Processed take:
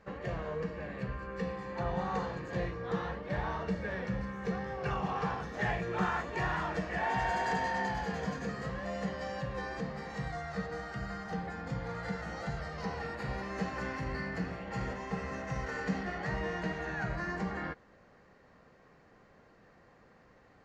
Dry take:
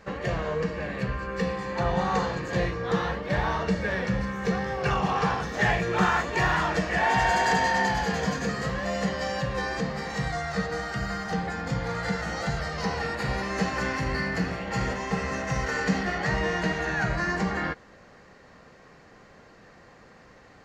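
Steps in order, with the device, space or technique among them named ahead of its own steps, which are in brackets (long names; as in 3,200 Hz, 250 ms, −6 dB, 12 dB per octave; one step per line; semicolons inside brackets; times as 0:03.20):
behind a face mask (high-shelf EQ 2,900 Hz −8 dB)
level −8 dB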